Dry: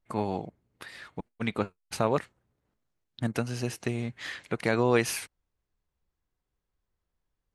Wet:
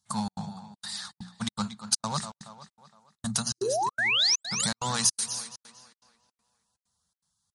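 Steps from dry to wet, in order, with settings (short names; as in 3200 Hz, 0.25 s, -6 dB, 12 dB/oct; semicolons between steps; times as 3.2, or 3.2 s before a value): in parallel at -9 dB: wavefolder -27.5 dBFS; on the sum: EQ curve 110 Hz 0 dB, 210 Hz +7 dB, 290 Hz -23 dB, 430 Hz -19 dB, 840 Hz +1 dB, 1200 Hz +2 dB, 2400 Hz -12 dB, 3900 Hz +9 dB, 6700 Hz +12 dB, 12000 Hz +10 dB; painted sound rise, 3.58–4.44, 330–8600 Hz -16 dBFS; notches 60/120/180/240/300/360/420 Hz; on a send: tape echo 0.23 s, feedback 51%, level -12.5 dB, low-pass 4600 Hz; on the sum: compressor 16:1, threshold -25 dBFS, peak gain reduction 11.5 dB; HPF 68 Hz 24 dB/oct; step gate "xxx.xxxx.xxx." 162 bpm -60 dB; high shelf 2900 Hz +7 dB; MP3 48 kbps 44100 Hz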